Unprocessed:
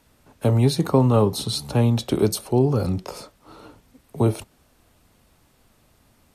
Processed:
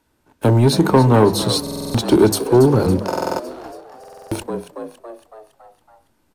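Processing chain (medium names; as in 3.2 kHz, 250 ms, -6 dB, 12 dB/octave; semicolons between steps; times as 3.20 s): hum notches 50/100/150/200/250 Hz; waveshaping leveller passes 2; in parallel at -11.5 dB: hysteresis with a dead band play -29.5 dBFS; on the sum: small resonant body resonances 330/910/1500 Hz, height 8 dB, ringing for 25 ms; on a send: frequency-shifting echo 279 ms, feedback 55%, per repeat +79 Hz, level -13 dB; on the sum: buffer glitch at 1.62/3.07/3.99 s, samples 2048, times 6; trim -3.5 dB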